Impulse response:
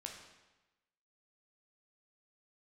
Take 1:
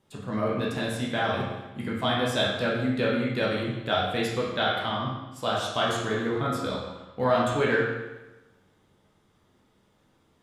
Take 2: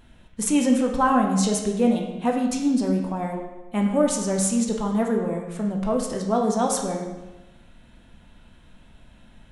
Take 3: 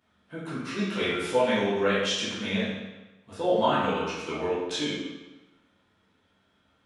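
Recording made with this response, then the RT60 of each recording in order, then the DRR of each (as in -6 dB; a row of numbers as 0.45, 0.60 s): 2; 1.1, 1.1, 1.1 s; -5.5, 1.0, -11.5 dB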